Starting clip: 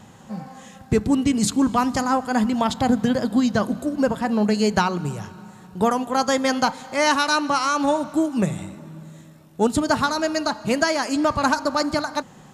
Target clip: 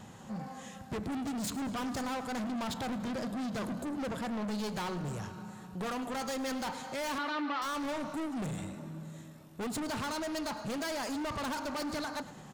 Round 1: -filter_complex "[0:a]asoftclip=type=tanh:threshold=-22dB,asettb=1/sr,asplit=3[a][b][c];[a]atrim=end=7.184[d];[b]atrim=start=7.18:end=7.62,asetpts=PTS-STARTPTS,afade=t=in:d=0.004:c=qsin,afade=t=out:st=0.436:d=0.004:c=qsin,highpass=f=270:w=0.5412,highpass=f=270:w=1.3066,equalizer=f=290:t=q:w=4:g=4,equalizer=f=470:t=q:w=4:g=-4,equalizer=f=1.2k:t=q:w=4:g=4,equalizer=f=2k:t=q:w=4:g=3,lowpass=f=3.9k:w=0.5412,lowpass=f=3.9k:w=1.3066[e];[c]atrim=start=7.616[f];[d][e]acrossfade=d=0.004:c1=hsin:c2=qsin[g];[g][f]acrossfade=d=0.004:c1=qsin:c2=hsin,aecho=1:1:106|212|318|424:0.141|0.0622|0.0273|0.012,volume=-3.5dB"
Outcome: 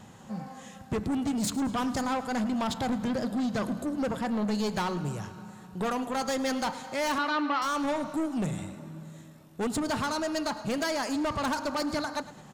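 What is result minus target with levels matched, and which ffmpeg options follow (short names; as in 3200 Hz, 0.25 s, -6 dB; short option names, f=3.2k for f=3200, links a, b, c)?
soft clip: distortion -4 dB
-filter_complex "[0:a]asoftclip=type=tanh:threshold=-30.5dB,asettb=1/sr,asplit=3[a][b][c];[a]atrim=end=7.184[d];[b]atrim=start=7.18:end=7.62,asetpts=PTS-STARTPTS,afade=t=in:d=0.004:c=qsin,afade=t=out:st=0.436:d=0.004:c=qsin,highpass=f=270:w=0.5412,highpass=f=270:w=1.3066,equalizer=f=290:t=q:w=4:g=4,equalizer=f=470:t=q:w=4:g=-4,equalizer=f=1.2k:t=q:w=4:g=4,equalizer=f=2k:t=q:w=4:g=3,lowpass=f=3.9k:w=0.5412,lowpass=f=3.9k:w=1.3066[e];[c]atrim=start=7.616[f];[d][e]acrossfade=d=0.004:c1=hsin:c2=qsin[g];[g][f]acrossfade=d=0.004:c1=qsin:c2=hsin,aecho=1:1:106|212|318|424:0.141|0.0622|0.0273|0.012,volume=-3.5dB"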